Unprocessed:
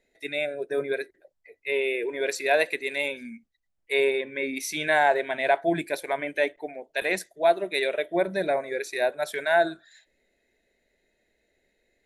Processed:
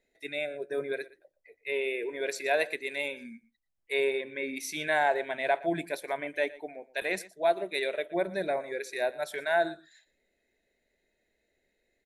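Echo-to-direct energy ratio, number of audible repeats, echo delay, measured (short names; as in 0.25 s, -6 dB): -19.5 dB, 1, 0.119 s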